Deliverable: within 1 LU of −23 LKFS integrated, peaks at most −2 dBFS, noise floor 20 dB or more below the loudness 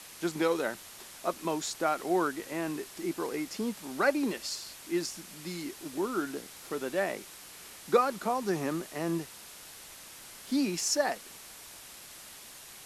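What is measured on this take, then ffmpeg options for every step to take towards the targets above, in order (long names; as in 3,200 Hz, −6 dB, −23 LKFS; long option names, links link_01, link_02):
background noise floor −49 dBFS; target noise floor −53 dBFS; integrated loudness −32.5 LKFS; sample peak −12.5 dBFS; target loudness −23.0 LKFS
→ -af "afftdn=noise_reduction=6:noise_floor=-49"
-af "volume=9.5dB"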